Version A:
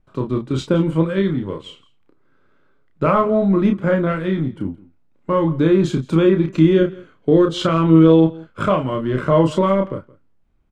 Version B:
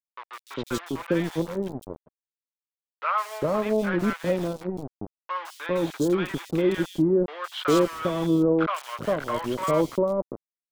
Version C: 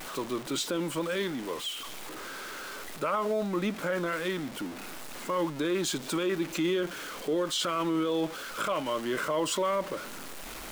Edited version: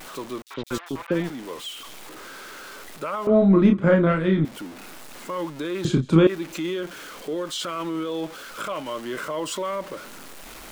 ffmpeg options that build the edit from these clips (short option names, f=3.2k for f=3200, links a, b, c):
-filter_complex "[0:a]asplit=2[a][b];[2:a]asplit=4[c][d][e][f];[c]atrim=end=0.422[g];[1:a]atrim=start=0.418:end=1.302[h];[d]atrim=start=1.298:end=3.272[i];[a]atrim=start=3.268:end=4.452[j];[e]atrim=start=4.448:end=5.852[k];[b]atrim=start=5.848:end=6.272[l];[f]atrim=start=6.268[m];[g][h]acrossfade=d=0.004:c1=hsin:c2=hsin[n];[n][i]acrossfade=d=0.004:c1=hsin:c2=hsin[o];[o][j]acrossfade=d=0.004:c1=hsin:c2=hsin[p];[p][k]acrossfade=d=0.004:c1=hsin:c2=hsin[q];[q][l]acrossfade=d=0.004:c1=hsin:c2=hsin[r];[r][m]acrossfade=d=0.004:c1=hsin:c2=hsin"